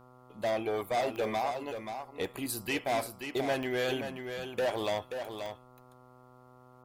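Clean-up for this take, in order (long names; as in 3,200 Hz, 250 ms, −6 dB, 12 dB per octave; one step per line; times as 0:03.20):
click removal
hum removal 125.8 Hz, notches 11
echo removal 531 ms −7.5 dB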